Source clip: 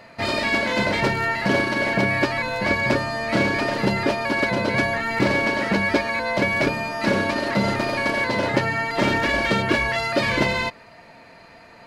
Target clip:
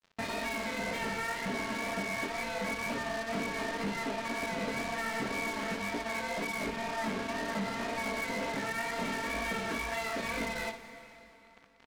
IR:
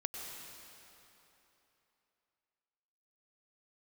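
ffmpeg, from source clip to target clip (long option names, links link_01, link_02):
-filter_complex "[0:a]aecho=1:1:4.4:0.78,acompressor=threshold=-30dB:ratio=4,flanger=delay=16.5:depth=6.4:speed=2,aeval=exprs='0.0944*(cos(1*acos(clip(val(0)/0.0944,-1,1)))-cos(1*PI/2))+0.0188*(cos(5*acos(clip(val(0)/0.0944,-1,1)))-cos(5*PI/2))':channel_layout=same,adynamicsmooth=sensitivity=2.5:basefreq=2600,acrusher=bits=4:mix=0:aa=0.5,asplit=2[link_01][link_02];[1:a]atrim=start_sample=2205,adelay=59[link_03];[link_02][link_03]afir=irnorm=-1:irlink=0,volume=-9.5dB[link_04];[link_01][link_04]amix=inputs=2:normalize=0,volume=-6dB"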